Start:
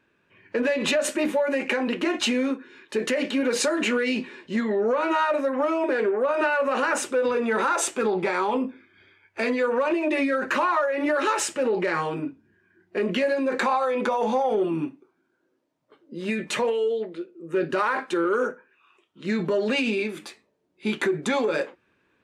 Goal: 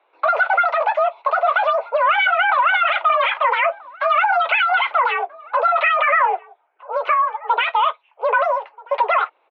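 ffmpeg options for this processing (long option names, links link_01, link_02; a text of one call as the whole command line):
ffmpeg -i in.wav -filter_complex "[0:a]asetrate=103194,aresample=44100,asplit=2[link_01][link_02];[link_02]adelay=1283,volume=-21dB,highshelf=frequency=4000:gain=-28.9[link_03];[link_01][link_03]amix=inputs=2:normalize=0,highpass=frequency=300:width_type=q:width=0.5412,highpass=frequency=300:width_type=q:width=1.307,lowpass=frequency=2600:width_type=q:width=0.5176,lowpass=frequency=2600:width_type=q:width=0.7071,lowpass=frequency=2600:width_type=q:width=1.932,afreqshift=63,volume=7.5dB" out.wav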